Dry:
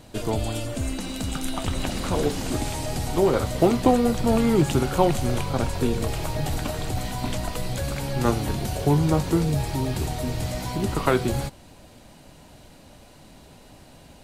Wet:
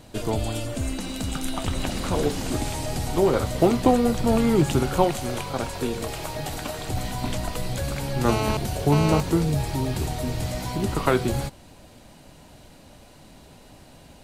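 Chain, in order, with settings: 5.04–6.89 s: bass shelf 220 Hz -9.5 dB; 8.29–9.20 s: mobile phone buzz -26 dBFS

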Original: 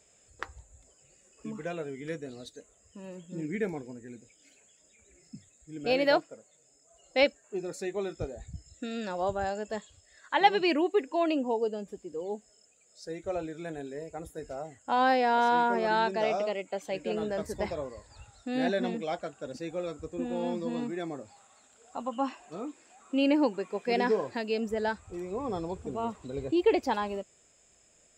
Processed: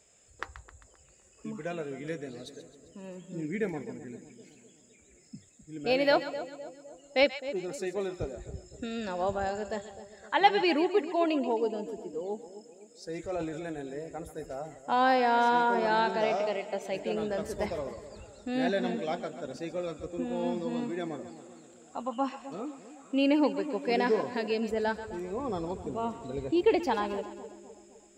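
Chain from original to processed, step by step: 13.09–13.65 s: transient shaper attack -4 dB, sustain +7 dB; two-band feedback delay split 730 Hz, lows 257 ms, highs 132 ms, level -12.5 dB

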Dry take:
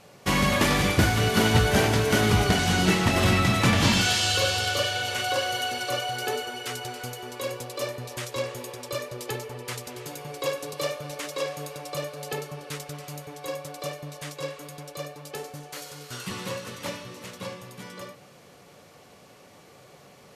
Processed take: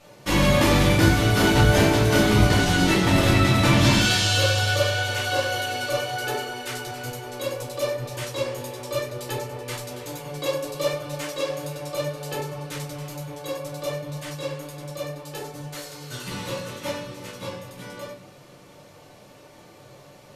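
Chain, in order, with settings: simulated room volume 140 m³, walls furnished, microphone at 2.6 m; trim -3.5 dB

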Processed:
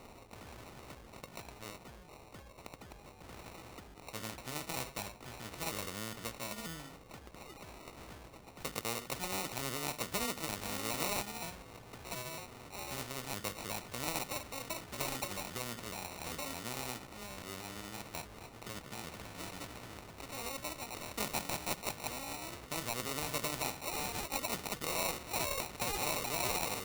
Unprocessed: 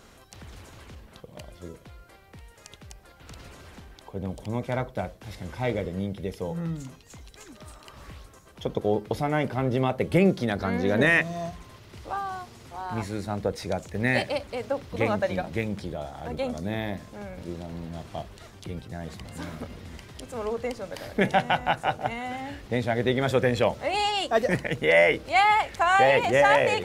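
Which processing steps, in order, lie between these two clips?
sawtooth pitch modulation +5 st, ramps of 952 ms; sample-and-hold 27×; spectrum-flattening compressor 2:1; trim -7.5 dB

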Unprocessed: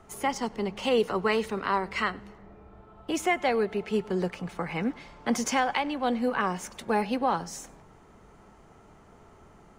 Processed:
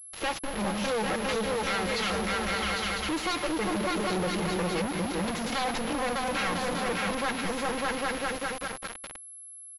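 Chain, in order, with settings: self-modulated delay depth 0.44 ms; trance gate ".xx.xxxxx" 117 bpm -60 dB; in parallel at -3 dB: saturation -29 dBFS, distortion -8 dB; on the sum: comb 3.7 ms, depth 92%; spectral noise reduction 8 dB; delay with an opening low-pass 200 ms, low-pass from 200 Hz, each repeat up 2 oct, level -3 dB; compression, threshold -24 dBFS, peak gain reduction 8.5 dB; companded quantiser 2-bit; peaking EQ 250 Hz -10.5 dB 0.28 oct; class-D stage that switches slowly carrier 11 kHz; trim -1.5 dB

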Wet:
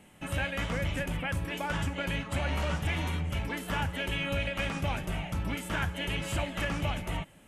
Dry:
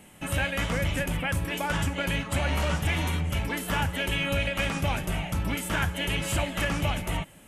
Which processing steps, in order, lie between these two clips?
treble shelf 7.5 kHz -8 dB; trim -4 dB

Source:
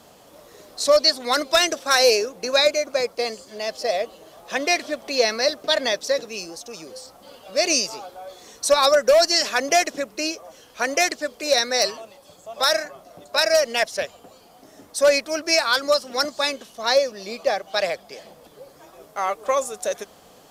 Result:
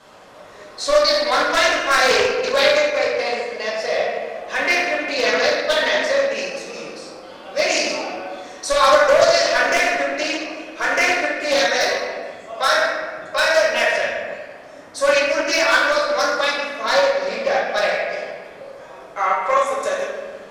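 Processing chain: low-pass 9.7 kHz 12 dB/octave; peaking EQ 1.5 kHz +10 dB 2.2 oct; in parallel at -2.5 dB: compression, threshold -23 dBFS, peak gain reduction 16.5 dB; on the sum: wavefolder -3 dBFS; reverberation RT60 1.7 s, pre-delay 4 ms, DRR -6.5 dB; loudspeaker Doppler distortion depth 0.2 ms; trim -11 dB

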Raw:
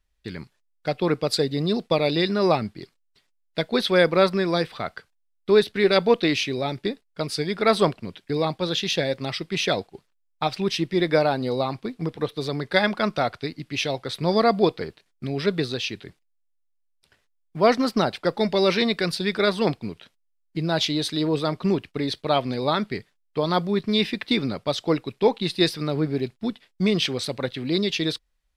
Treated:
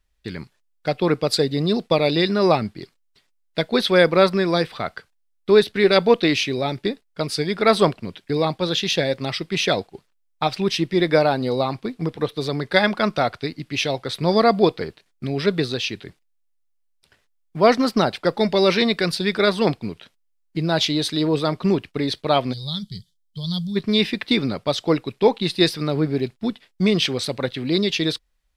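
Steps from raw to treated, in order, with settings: time-frequency box 22.53–23.76 s, 200–3000 Hz -25 dB; trim +3 dB

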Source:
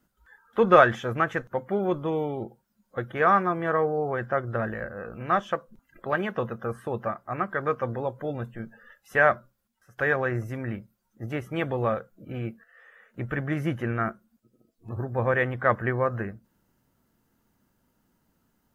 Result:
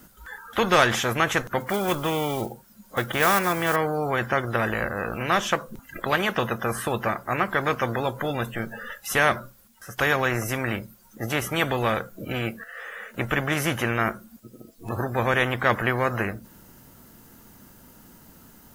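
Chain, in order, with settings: 1.60–3.76 s: block-companded coder 7-bit; treble shelf 5.7 kHz +7.5 dB; spectrum-flattening compressor 2:1

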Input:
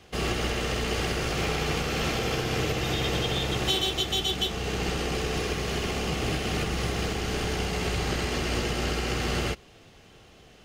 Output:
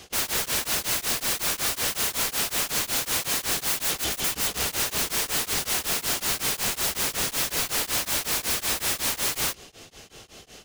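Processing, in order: tone controls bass -4 dB, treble +11 dB; in parallel at +2 dB: peak limiter -18.5 dBFS, peak gain reduction 9.5 dB; on the sum: integer overflow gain 19 dB; tremolo of two beating tones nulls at 5.4 Hz

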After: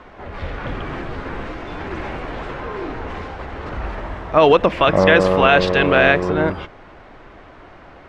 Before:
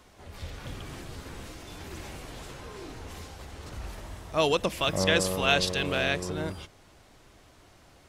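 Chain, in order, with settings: Chebyshev low-pass 1.7 kHz, order 2; peaking EQ 93 Hz -7 dB 2.1 oct; loudness maximiser +18 dB; trim -1 dB

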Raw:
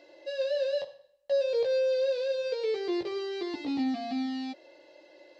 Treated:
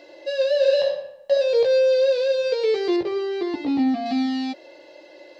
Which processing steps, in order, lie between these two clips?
0.57–1.32 s: reverb throw, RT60 0.83 s, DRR 0 dB; 2.96–4.06 s: treble shelf 3 kHz -11 dB; trim +9 dB

